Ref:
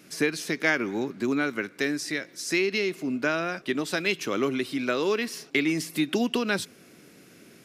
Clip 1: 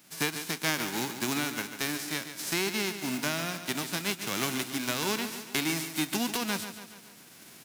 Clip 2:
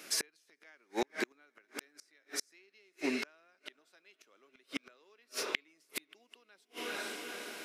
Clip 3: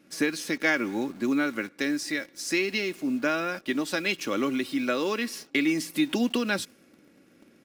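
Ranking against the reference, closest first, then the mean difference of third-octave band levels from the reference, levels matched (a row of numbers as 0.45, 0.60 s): 3, 1, 2; 3.0, 10.5, 17.5 dB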